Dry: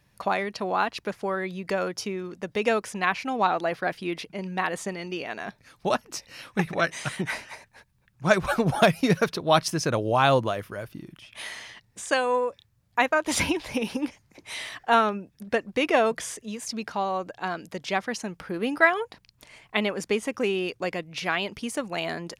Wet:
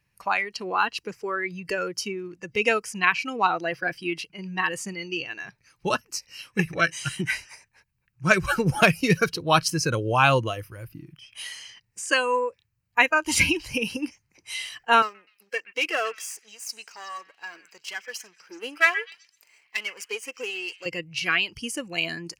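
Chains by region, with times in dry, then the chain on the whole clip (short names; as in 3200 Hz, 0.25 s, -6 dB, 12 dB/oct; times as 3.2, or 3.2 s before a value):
15.02–20.86 half-wave gain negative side -12 dB + HPF 430 Hz + delay with a stepping band-pass 0.125 s, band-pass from 2000 Hz, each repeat 0.7 oct, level -9 dB
whole clip: fifteen-band EQ 250 Hz -6 dB, 630 Hz -7 dB, 2500 Hz +6 dB; spectral noise reduction 12 dB; notch 3500 Hz, Q 5.3; gain +3.5 dB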